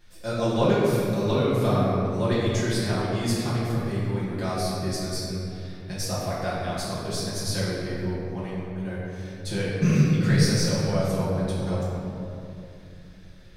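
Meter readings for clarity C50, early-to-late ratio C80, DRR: −2.5 dB, −0.5 dB, −10.5 dB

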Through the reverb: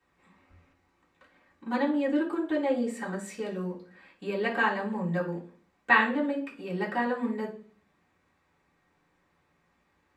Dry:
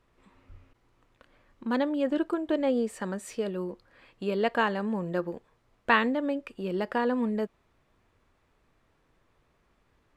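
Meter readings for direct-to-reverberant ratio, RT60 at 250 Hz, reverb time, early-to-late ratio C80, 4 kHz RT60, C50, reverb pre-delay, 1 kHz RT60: −10.5 dB, 0.65 s, 0.45 s, 16.0 dB, 0.50 s, 10.0 dB, 3 ms, 0.35 s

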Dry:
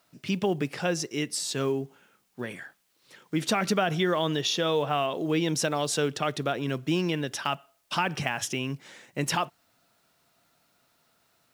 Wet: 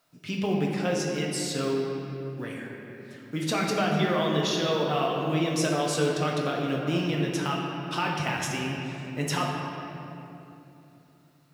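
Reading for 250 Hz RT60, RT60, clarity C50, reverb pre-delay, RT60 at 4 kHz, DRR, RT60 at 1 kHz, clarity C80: 4.0 s, 3.0 s, 0.5 dB, 6 ms, 1.8 s, −2.5 dB, 2.6 s, 2.0 dB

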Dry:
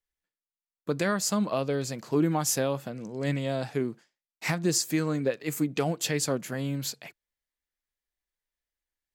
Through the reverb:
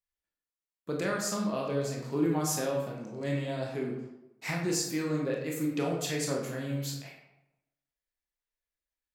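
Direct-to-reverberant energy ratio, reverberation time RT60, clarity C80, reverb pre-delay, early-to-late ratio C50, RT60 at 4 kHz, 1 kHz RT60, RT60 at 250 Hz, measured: −1.5 dB, 0.90 s, 6.0 dB, 20 ms, 3.5 dB, 0.55 s, 0.90 s, 0.95 s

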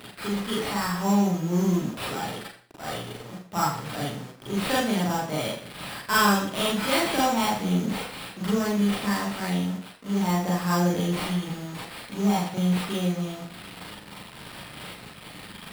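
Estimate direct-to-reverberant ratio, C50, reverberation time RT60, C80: −5.5 dB, 4.5 dB, 0.50 s, 6.5 dB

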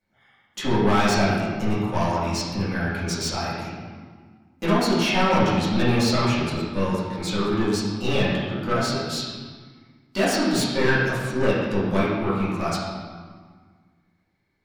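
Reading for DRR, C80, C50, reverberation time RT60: −10.5 dB, 1.5 dB, −0.5 dB, 1.6 s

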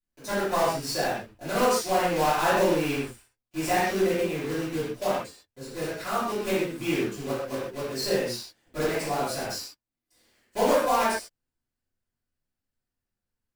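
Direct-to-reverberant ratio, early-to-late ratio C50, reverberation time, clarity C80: −15.5 dB, −1.5 dB, non-exponential decay, 2.0 dB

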